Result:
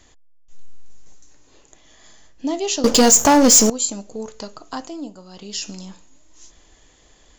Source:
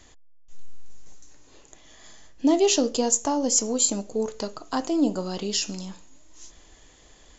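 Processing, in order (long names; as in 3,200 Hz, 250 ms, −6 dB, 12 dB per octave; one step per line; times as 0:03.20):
dynamic equaliser 390 Hz, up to −5 dB, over −36 dBFS, Q 0.92
0:02.84–0:03.70: leveller curve on the samples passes 5
0:04.71–0:05.69: duck −10 dB, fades 0.42 s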